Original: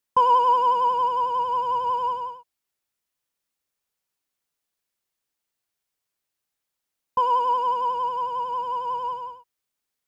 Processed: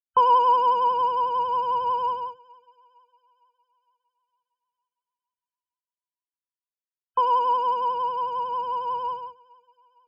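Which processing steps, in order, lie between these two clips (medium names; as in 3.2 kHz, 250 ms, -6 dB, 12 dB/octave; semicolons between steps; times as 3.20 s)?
hum notches 50/100/150 Hz; expander -31 dBFS; loudest bins only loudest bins 64; thinning echo 458 ms, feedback 54%, high-pass 580 Hz, level -23 dB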